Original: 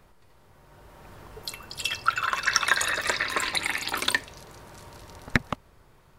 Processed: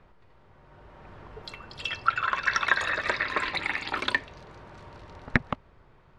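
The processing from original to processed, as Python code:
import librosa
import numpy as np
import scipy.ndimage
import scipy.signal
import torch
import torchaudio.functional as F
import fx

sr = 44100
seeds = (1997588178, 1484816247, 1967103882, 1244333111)

y = scipy.signal.sosfilt(scipy.signal.butter(2, 3000.0, 'lowpass', fs=sr, output='sos'), x)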